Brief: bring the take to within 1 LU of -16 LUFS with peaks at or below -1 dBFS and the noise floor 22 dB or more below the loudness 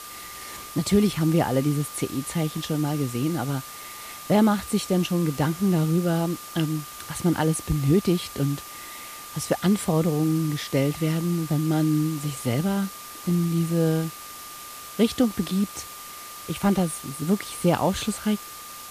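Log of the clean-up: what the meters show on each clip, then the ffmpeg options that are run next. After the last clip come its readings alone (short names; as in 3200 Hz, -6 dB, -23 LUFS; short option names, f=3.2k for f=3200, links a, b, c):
steady tone 1200 Hz; tone level -42 dBFS; noise floor -40 dBFS; noise floor target -47 dBFS; loudness -24.5 LUFS; peak -8.0 dBFS; loudness target -16.0 LUFS
-> -af "bandreject=f=1.2k:w=30"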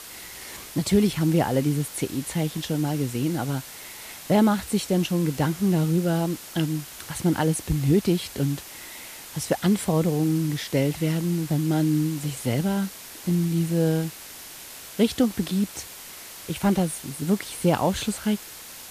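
steady tone none; noise floor -42 dBFS; noise floor target -47 dBFS
-> -af "afftdn=nr=6:nf=-42"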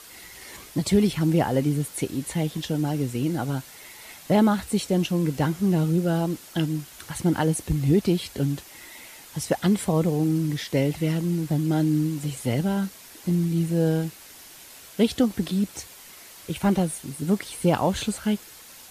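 noise floor -46 dBFS; noise floor target -47 dBFS
-> -af "afftdn=nr=6:nf=-46"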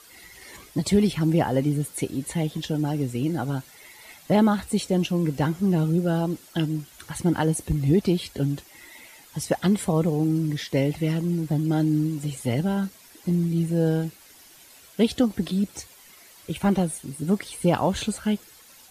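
noise floor -51 dBFS; loudness -25.0 LUFS; peak -8.5 dBFS; loudness target -16.0 LUFS
-> -af "volume=9dB,alimiter=limit=-1dB:level=0:latency=1"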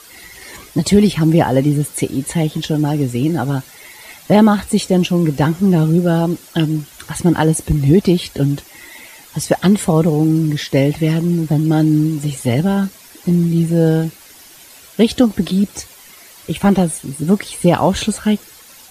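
loudness -16.0 LUFS; peak -1.0 dBFS; noise floor -42 dBFS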